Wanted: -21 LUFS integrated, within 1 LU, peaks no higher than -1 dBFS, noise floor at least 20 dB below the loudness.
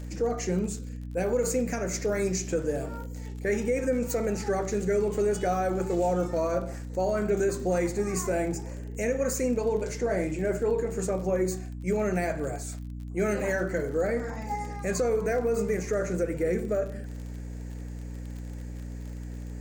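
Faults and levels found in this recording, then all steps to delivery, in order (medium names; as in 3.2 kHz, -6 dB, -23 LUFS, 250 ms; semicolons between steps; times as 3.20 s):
tick rate 41 per s; hum 60 Hz; highest harmonic 300 Hz; hum level -35 dBFS; loudness -29.0 LUFS; peak level -15.0 dBFS; loudness target -21.0 LUFS
-> de-click; hum notches 60/120/180/240/300 Hz; trim +8 dB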